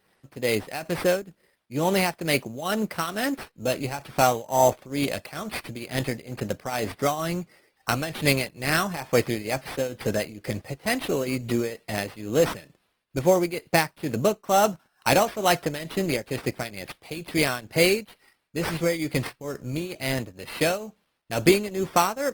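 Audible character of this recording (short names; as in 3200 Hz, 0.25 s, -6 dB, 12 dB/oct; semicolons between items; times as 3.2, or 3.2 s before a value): a quantiser's noise floor 12-bit, dither triangular; tremolo triangle 2.2 Hz, depth 85%; aliases and images of a low sample rate 6900 Hz, jitter 0%; Opus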